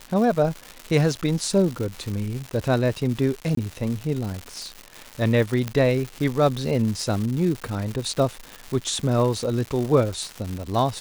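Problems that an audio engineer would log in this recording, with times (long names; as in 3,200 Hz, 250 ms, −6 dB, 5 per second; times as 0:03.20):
surface crackle 290 per second −28 dBFS
0:03.55–0:03.57: drop-out 23 ms
0:05.68: click −12 dBFS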